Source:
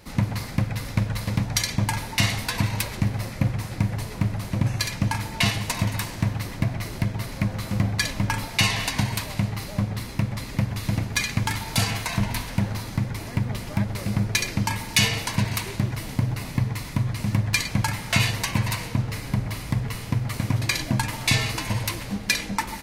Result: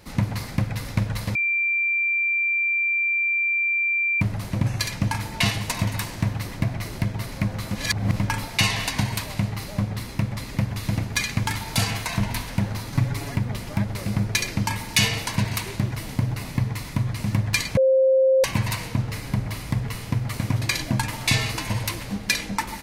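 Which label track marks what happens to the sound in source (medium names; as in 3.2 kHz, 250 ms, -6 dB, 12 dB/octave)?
1.350000	4.210000	bleep 2.36 kHz -19.5 dBFS
7.750000	8.160000	reverse
12.920000	13.360000	comb 7.1 ms, depth 100%
17.770000	18.440000	bleep 528 Hz -14 dBFS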